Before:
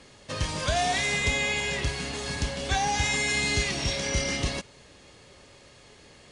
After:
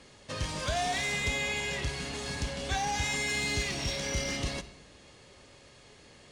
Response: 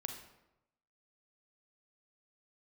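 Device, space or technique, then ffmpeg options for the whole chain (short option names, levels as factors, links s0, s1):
saturated reverb return: -filter_complex "[0:a]asplit=2[s0][s1];[1:a]atrim=start_sample=2205[s2];[s1][s2]afir=irnorm=-1:irlink=0,asoftclip=type=tanh:threshold=0.0251,volume=0.841[s3];[s0][s3]amix=inputs=2:normalize=0,volume=0.447"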